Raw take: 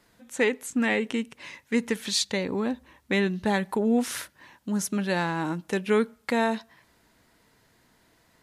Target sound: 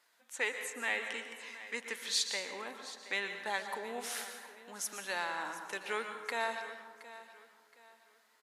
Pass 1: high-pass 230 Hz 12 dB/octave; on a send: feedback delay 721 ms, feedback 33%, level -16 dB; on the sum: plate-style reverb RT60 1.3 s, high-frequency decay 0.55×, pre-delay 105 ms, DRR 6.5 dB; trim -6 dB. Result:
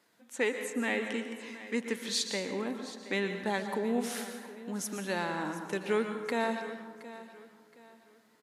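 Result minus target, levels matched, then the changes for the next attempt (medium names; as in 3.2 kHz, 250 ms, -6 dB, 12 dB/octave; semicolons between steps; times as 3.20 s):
250 Hz band +14.5 dB
change: high-pass 790 Hz 12 dB/octave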